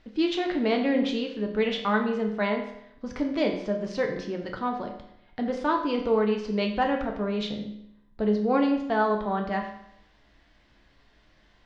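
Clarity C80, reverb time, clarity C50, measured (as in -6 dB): 9.5 dB, 0.75 s, 7.0 dB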